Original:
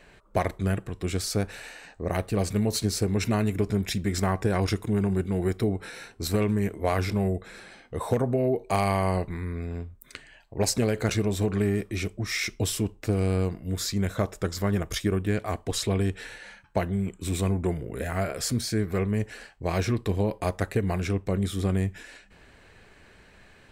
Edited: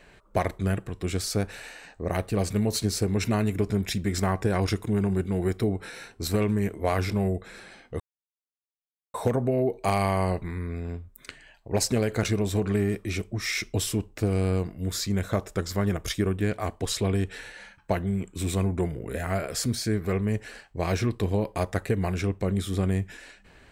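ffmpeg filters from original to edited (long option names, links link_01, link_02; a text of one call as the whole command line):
ffmpeg -i in.wav -filter_complex "[0:a]asplit=2[link_01][link_02];[link_01]atrim=end=8,asetpts=PTS-STARTPTS,afade=type=out:start_time=7.996:duration=0.004:curve=hsin,apad=pad_dur=1.14[link_03];[link_02]atrim=start=8,asetpts=PTS-STARTPTS,afade=type=in:duration=0.004:curve=hsin[link_04];[link_03][link_04]concat=n=2:v=0:a=1" out.wav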